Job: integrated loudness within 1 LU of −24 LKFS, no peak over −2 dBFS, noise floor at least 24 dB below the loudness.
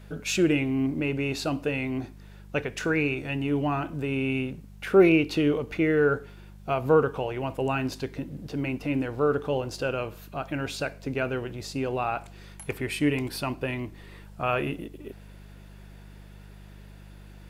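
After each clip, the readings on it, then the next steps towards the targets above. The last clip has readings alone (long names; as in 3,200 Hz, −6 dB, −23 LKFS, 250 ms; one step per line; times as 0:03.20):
mains hum 50 Hz; hum harmonics up to 200 Hz; level of the hum −45 dBFS; integrated loudness −27.5 LKFS; sample peak −8.0 dBFS; target loudness −24.0 LKFS
→ hum removal 50 Hz, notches 4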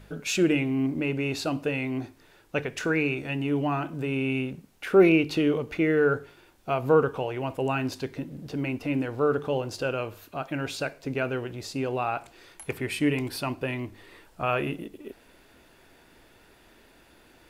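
mains hum none found; integrated loudness −27.5 LKFS; sample peak −8.0 dBFS; target loudness −24.0 LKFS
→ level +3.5 dB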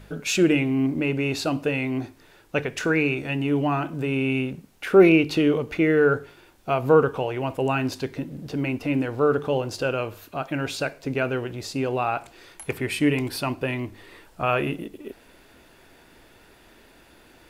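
integrated loudness −24.0 LKFS; sample peak −4.5 dBFS; background noise floor −54 dBFS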